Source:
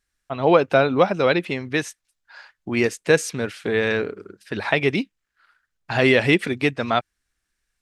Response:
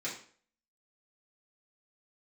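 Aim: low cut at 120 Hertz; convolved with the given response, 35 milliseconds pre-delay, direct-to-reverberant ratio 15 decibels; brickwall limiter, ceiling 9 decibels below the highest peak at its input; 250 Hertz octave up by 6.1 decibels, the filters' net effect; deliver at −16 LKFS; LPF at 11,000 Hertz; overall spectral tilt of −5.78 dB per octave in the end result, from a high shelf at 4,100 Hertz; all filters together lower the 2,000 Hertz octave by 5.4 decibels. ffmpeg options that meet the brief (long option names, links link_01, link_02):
-filter_complex "[0:a]highpass=120,lowpass=11000,equalizer=frequency=250:width_type=o:gain=8,equalizer=frequency=2000:width_type=o:gain=-5.5,highshelf=frequency=4100:gain=-6,alimiter=limit=-10dB:level=0:latency=1,asplit=2[link_01][link_02];[1:a]atrim=start_sample=2205,adelay=35[link_03];[link_02][link_03]afir=irnorm=-1:irlink=0,volume=-18dB[link_04];[link_01][link_04]amix=inputs=2:normalize=0,volume=6dB"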